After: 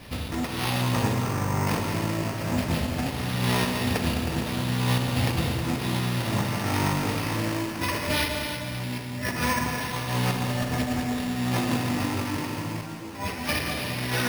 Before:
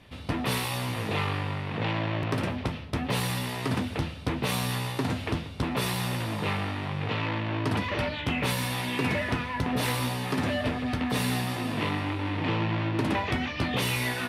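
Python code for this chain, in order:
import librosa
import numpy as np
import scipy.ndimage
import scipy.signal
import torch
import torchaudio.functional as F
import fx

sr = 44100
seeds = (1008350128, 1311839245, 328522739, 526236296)

y = fx.lowpass(x, sr, hz=1700.0, slope=12, at=(0.81, 1.67))
y = fx.low_shelf(y, sr, hz=250.0, db=8.0, at=(8.26, 9.24))
y = fx.over_compress(y, sr, threshold_db=-33.0, ratio=-0.5)
y = fx.echo_heads(y, sr, ms=105, heads='second and third', feedback_pct=40, wet_db=-10)
y = fx.rev_schroeder(y, sr, rt60_s=1.9, comb_ms=33, drr_db=3.0)
y = np.repeat(y[::6], 6)[:len(y)]
y = fx.ensemble(y, sr, at=(12.81, 13.49))
y = y * 10.0 ** (4.0 / 20.0)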